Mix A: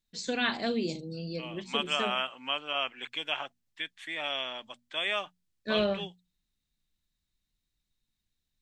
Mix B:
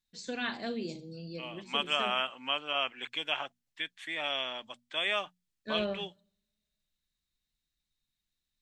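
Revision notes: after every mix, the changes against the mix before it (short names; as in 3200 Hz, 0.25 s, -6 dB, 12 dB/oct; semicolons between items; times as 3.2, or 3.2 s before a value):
first voice -6.0 dB; reverb: on, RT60 0.55 s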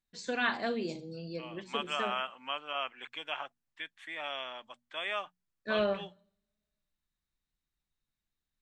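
second voice -8.5 dB; master: add EQ curve 220 Hz 0 dB, 1200 Hz +8 dB, 3800 Hz 0 dB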